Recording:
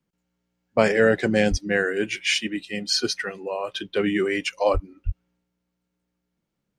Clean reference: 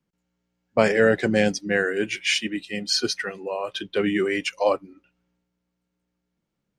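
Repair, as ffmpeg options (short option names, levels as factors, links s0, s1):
-filter_complex "[0:a]asplit=3[s0][s1][s2];[s0]afade=t=out:st=1.5:d=0.02[s3];[s1]highpass=f=140:w=0.5412,highpass=f=140:w=1.3066,afade=t=in:st=1.5:d=0.02,afade=t=out:st=1.62:d=0.02[s4];[s2]afade=t=in:st=1.62:d=0.02[s5];[s3][s4][s5]amix=inputs=3:normalize=0,asplit=3[s6][s7][s8];[s6]afade=t=out:st=4.73:d=0.02[s9];[s7]highpass=f=140:w=0.5412,highpass=f=140:w=1.3066,afade=t=in:st=4.73:d=0.02,afade=t=out:st=4.85:d=0.02[s10];[s8]afade=t=in:st=4.85:d=0.02[s11];[s9][s10][s11]amix=inputs=3:normalize=0,asplit=3[s12][s13][s14];[s12]afade=t=out:st=5.05:d=0.02[s15];[s13]highpass=f=140:w=0.5412,highpass=f=140:w=1.3066,afade=t=in:st=5.05:d=0.02,afade=t=out:st=5.17:d=0.02[s16];[s14]afade=t=in:st=5.17:d=0.02[s17];[s15][s16][s17]amix=inputs=3:normalize=0"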